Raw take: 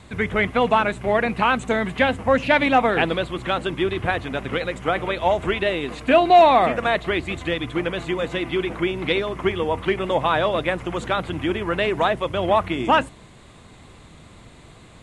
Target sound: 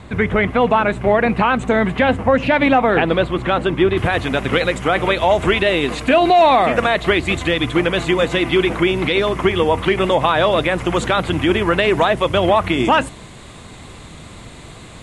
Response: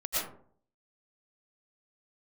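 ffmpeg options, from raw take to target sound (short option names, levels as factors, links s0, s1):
-af "asetnsamples=n=441:p=0,asendcmd='3.97 highshelf g 3.5',highshelf=f=3300:g=-10,alimiter=limit=0.224:level=0:latency=1:release=91,volume=2.66"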